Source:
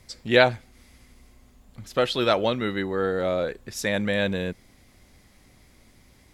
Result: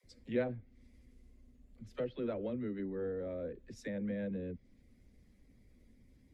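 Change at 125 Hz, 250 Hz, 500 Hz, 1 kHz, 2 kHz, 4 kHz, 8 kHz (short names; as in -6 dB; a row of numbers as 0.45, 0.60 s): -12.5 dB, -10.0 dB, -15.0 dB, -25.0 dB, -24.5 dB, -30.5 dB, under -20 dB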